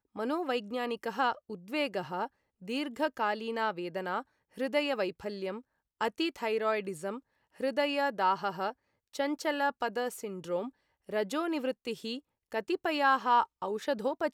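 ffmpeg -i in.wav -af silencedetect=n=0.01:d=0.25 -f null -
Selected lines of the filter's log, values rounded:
silence_start: 2.26
silence_end: 2.68 | silence_duration: 0.41
silence_start: 4.21
silence_end: 4.58 | silence_duration: 0.36
silence_start: 5.59
silence_end: 6.01 | silence_duration: 0.42
silence_start: 7.18
silence_end: 7.60 | silence_duration: 0.42
silence_start: 8.71
silence_end: 9.15 | silence_duration: 0.44
silence_start: 10.69
silence_end: 11.09 | silence_duration: 0.40
silence_start: 12.19
silence_end: 12.52 | silence_duration: 0.33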